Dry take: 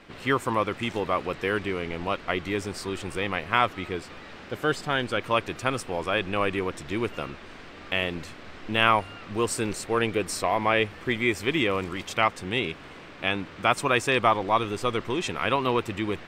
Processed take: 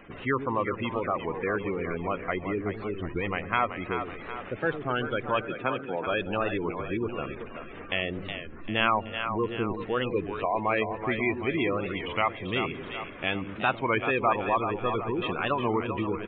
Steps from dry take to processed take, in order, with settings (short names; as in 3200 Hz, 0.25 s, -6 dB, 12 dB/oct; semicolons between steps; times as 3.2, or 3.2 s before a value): spectral gate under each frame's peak -15 dB strong; in parallel at 0 dB: compressor, threshold -34 dBFS, peak gain reduction 17 dB; 5.44–6.07 on the sum: HPF 140 Hz 24 dB/oct; on a send: split-band echo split 460 Hz, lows 0.111 s, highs 0.379 s, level -7.5 dB; on the sum: downsampling 8000 Hz; record warp 33 1/3 rpm, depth 160 cents; gain -4.5 dB